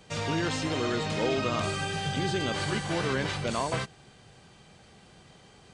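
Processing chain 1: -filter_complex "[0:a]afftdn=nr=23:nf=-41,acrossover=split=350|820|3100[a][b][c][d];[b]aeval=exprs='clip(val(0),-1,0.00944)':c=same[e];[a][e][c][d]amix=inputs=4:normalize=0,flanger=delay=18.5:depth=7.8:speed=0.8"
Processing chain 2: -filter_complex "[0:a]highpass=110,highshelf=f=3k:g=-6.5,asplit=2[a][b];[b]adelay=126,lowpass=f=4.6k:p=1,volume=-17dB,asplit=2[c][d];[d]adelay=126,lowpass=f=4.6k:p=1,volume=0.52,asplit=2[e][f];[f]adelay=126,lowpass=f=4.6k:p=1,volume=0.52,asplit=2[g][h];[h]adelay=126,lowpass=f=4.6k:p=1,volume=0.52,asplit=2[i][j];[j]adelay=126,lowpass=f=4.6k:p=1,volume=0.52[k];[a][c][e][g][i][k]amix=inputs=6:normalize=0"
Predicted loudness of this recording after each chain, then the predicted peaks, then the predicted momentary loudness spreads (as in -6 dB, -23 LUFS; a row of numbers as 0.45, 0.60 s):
-33.5, -30.5 LUFS; -19.5, -17.0 dBFS; 3, 3 LU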